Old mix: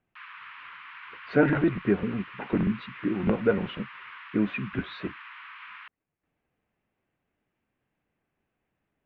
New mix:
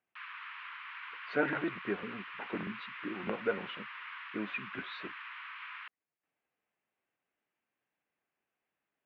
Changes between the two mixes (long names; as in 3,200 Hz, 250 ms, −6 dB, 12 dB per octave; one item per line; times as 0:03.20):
speech −3.5 dB
master: add high-pass filter 780 Hz 6 dB per octave